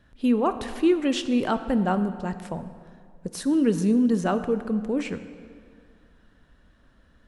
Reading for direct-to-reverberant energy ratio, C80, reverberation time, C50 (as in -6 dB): 10.5 dB, 12.5 dB, 2.2 s, 11.5 dB